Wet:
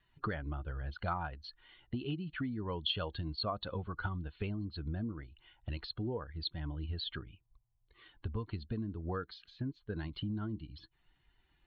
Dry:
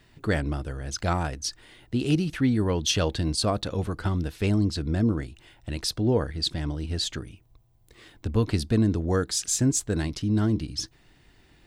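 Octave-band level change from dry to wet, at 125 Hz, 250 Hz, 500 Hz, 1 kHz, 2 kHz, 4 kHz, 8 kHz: -13.0 dB, -15.0 dB, -14.0 dB, -8.0 dB, -9.5 dB, -10.5 dB, under -40 dB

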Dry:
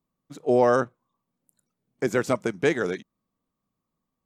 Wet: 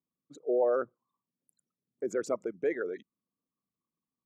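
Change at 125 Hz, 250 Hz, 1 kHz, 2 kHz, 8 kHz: -23.5 dB, -11.0 dB, -12.0 dB, -13.0 dB, -9.0 dB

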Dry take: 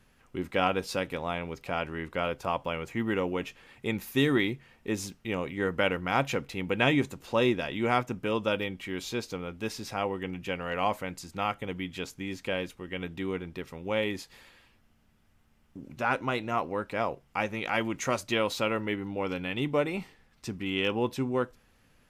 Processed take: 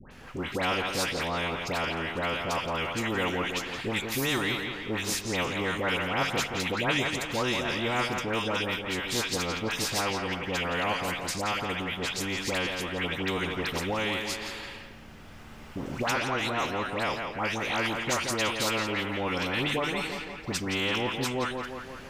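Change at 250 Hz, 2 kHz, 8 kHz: -1.0 dB, +4.0 dB, +10.0 dB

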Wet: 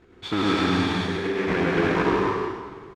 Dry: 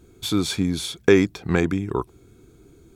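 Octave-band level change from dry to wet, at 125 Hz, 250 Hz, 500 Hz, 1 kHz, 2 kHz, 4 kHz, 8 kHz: -2.0 dB, -1.0 dB, -1.5 dB, +9.0 dB, +3.0 dB, -0.5 dB, -11.0 dB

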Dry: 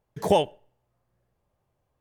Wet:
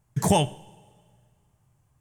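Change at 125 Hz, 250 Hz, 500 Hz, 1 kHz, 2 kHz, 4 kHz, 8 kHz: +10.0 dB, +5.0 dB, -4.0 dB, +0.5 dB, +3.5 dB, +2.5 dB, +12.5 dB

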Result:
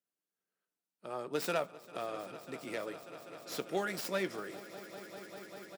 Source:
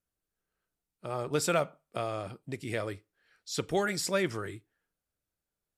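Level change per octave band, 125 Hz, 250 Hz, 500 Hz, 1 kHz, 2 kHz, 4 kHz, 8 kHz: -12.5 dB, -6.0 dB, -5.0 dB, -4.5 dB, -4.5 dB, -6.0 dB, -10.0 dB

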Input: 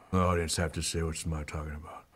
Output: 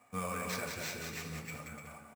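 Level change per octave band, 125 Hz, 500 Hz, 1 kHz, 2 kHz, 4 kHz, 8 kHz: -13.0 dB, -10.0 dB, -7.0 dB, -1.5 dB, -7.0 dB, -7.5 dB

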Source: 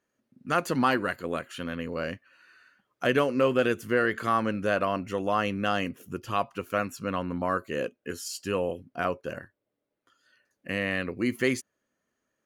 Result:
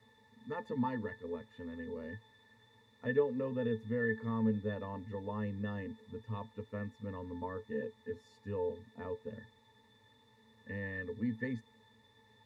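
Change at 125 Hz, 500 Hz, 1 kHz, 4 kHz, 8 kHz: -5.0 dB, -10.0 dB, -16.5 dB, -20.5 dB, under -30 dB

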